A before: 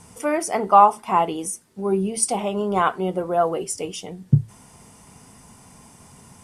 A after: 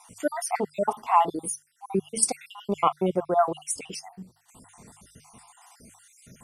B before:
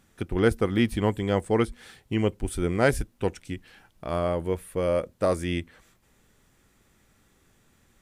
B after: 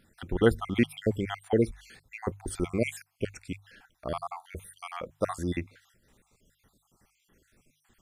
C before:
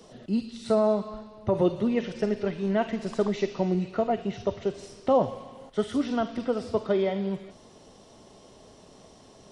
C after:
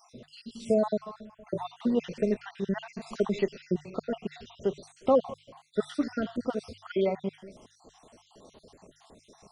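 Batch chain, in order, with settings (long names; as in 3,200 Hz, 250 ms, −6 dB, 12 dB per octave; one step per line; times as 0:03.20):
time-frequency cells dropped at random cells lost 55%
mains-hum notches 50/100/150 Hz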